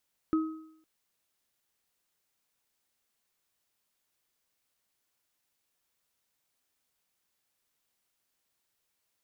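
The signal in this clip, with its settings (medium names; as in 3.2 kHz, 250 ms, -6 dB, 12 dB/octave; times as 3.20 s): sine partials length 0.51 s, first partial 317 Hz, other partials 1.27 kHz, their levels -12 dB, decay 0.70 s, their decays 0.67 s, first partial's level -21.5 dB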